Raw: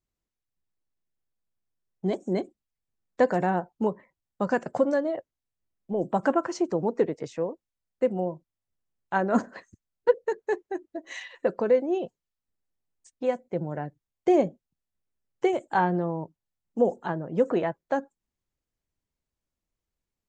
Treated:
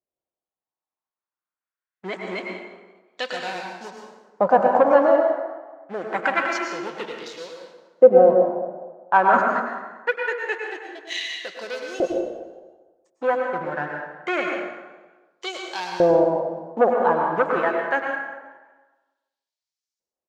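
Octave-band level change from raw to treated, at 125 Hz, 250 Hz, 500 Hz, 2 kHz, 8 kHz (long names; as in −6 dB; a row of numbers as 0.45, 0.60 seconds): −4.5 dB, −1.0 dB, +6.5 dB, +11.0 dB, can't be measured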